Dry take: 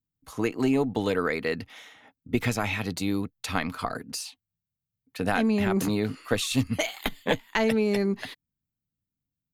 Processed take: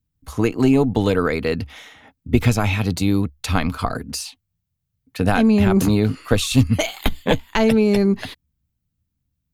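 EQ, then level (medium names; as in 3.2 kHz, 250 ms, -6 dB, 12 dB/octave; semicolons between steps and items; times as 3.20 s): peaking EQ 70 Hz +10 dB 0.35 oct; bass shelf 140 Hz +10.5 dB; dynamic bell 1.9 kHz, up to -6 dB, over -47 dBFS, Q 4.9; +6.0 dB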